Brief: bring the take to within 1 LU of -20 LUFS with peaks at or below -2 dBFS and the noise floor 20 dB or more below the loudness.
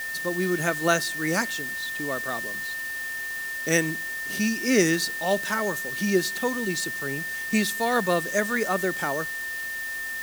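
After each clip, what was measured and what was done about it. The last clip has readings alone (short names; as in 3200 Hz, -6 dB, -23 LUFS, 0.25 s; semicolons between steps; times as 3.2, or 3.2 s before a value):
steady tone 1800 Hz; tone level -30 dBFS; noise floor -32 dBFS; noise floor target -46 dBFS; loudness -26.0 LUFS; peak -6.0 dBFS; loudness target -20.0 LUFS
-> notch 1800 Hz, Q 30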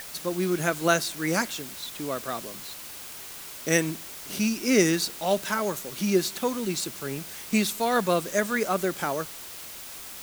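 steady tone none; noise floor -41 dBFS; noise floor target -47 dBFS
-> denoiser 6 dB, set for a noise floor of -41 dBFS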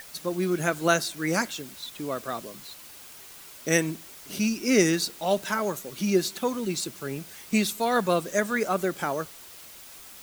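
noise floor -46 dBFS; noise floor target -47 dBFS
-> denoiser 6 dB, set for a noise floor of -46 dBFS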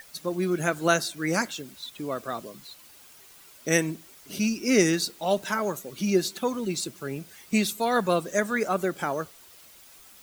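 noise floor -52 dBFS; loudness -27.0 LUFS; peak -6.5 dBFS; loudness target -20.0 LUFS
-> gain +7 dB; limiter -2 dBFS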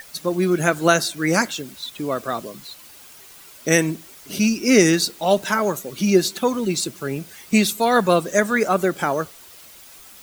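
loudness -20.0 LUFS; peak -2.0 dBFS; noise floor -45 dBFS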